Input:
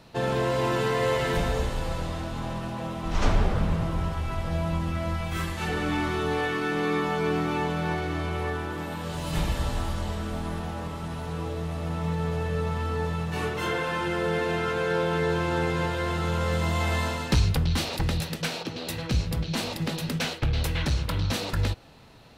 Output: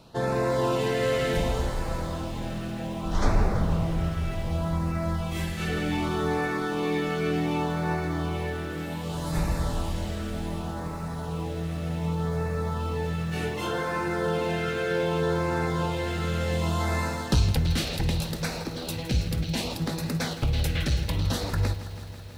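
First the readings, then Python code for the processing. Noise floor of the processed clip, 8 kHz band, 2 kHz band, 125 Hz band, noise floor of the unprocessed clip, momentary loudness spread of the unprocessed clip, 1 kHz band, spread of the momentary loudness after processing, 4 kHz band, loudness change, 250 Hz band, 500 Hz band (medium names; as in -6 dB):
-35 dBFS, +0.5 dB, -2.0 dB, +0.5 dB, -36 dBFS, 8 LU, -1.5 dB, 7 LU, -1.0 dB, 0.0 dB, +1.0 dB, 0.0 dB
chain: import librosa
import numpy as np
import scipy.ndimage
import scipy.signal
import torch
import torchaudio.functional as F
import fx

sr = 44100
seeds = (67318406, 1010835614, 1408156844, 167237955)

y = fx.filter_lfo_notch(x, sr, shape='sine', hz=0.66, low_hz=920.0, high_hz=3200.0, q=1.6)
y = fx.echo_crushed(y, sr, ms=164, feedback_pct=80, bits=8, wet_db=-14.0)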